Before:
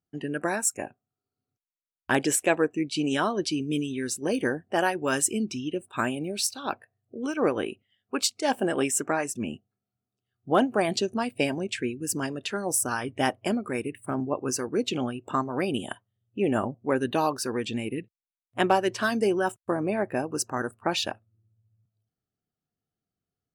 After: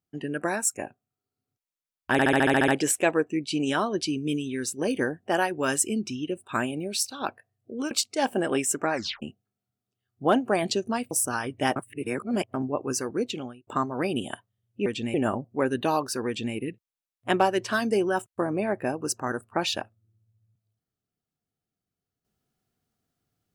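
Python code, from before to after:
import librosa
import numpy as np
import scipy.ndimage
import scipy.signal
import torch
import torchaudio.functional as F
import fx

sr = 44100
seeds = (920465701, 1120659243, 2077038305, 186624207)

y = fx.edit(x, sr, fx.stutter(start_s=2.12, slice_s=0.07, count=9),
    fx.cut(start_s=7.35, length_s=0.82),
    fx.tape_stop(start_s=9.2, length_s=0.28),
    fx.cut(start_s=11.37, length_s=1.32),
    fx.reverse_span(start_s=13.34, length_s=0.78),
    fx.fade_out_span(start_s=14.71, length_s=0.54),
    fx.duplicate(start_s=17.57, length_s=0.28, to_s=16.44), tone=tone)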